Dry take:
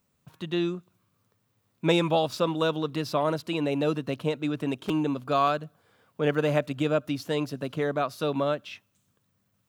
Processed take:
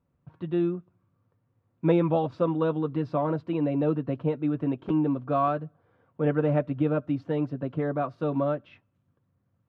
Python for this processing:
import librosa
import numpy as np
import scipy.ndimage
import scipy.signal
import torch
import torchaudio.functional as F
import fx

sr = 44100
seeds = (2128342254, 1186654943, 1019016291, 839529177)

y = scipy.signal.sosfilt(scipy.signal.butter(2, 1600.0, 'lowpass', fs=sr, output='sos'), x)
y = fx.low_shelf(y, sr, hz=490.0, db=6.0)
y = fx.notch_comb(y, sr, f0_hz=210.0)
y = y * librosa.db_to_amplitude(-2.0)